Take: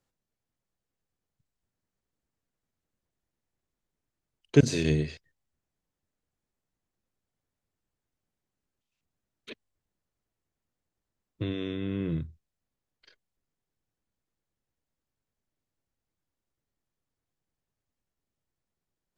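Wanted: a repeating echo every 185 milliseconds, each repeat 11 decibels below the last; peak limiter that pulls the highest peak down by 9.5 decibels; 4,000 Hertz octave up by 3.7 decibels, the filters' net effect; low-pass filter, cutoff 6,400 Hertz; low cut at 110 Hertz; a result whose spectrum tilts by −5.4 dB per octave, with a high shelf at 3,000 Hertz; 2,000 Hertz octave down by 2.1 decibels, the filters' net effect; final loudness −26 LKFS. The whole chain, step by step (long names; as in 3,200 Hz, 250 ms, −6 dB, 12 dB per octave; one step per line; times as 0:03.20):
high-pass filter 110 Hz
low-pass filter 6,400 Hz
parametric band 2,000 Hz −6 dB
high-shelf EQ 3,000 Hz +3.5 dB
parametric band 4,000 Hz +4 dB
brickwall limiter −16 dBFS
repeating echo 185 ms, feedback 28%, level −11 dB
level +5.5 dB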